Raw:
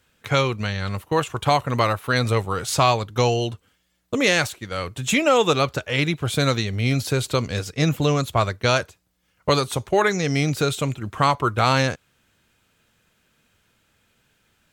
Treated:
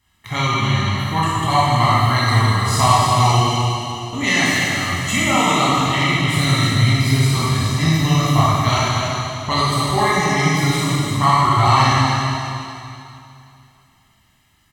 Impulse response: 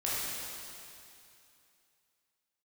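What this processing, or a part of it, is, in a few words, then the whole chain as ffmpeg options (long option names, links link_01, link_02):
cave: -filter_complex "[0:a]aecho=1:1:1:0.91,aecho=1:1:298:0.376[link_01];[1:a]atrim=start_sample=2205[link_02];[link_01][link_02]afir=irnorm=-1:irlink=0,volume=-4.5dB"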